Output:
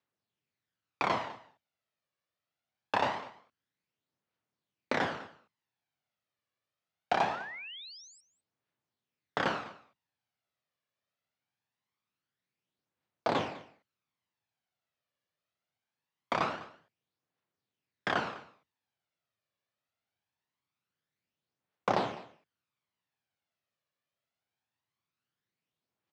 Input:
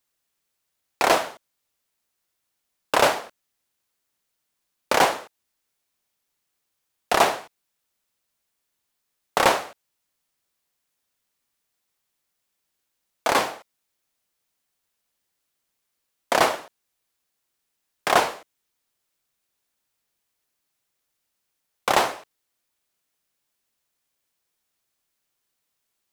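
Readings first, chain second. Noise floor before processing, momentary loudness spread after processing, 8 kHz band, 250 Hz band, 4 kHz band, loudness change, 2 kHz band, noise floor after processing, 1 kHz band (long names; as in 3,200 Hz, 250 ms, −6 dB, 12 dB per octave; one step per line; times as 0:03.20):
−78 dBFS, 17 LU, −23.5 dB, −6.0 dB, −13.0 dB, −11.5 dB, −10.5 dB, below −85 dBFS, −10.5 dB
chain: sub-octave generator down 1 octave, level −1 dB
high-pass filter 96 Hz 24 dB per octave
downward compressor 5 to 1, threshold −18 dBFS, peak gain reduction 6 dB
phase shifter 0.23 Hz, delay 1.8 ms, feedback 46%
sound drawn into the spectrogram rise, 0:07.30–0:08.21, 1,200–8,400 Hz −35 dBFS
high-frequency loss of the air 190 metres
on a send: single-tap delay 202 ms −19 dB
on the sum: level −6.5 dB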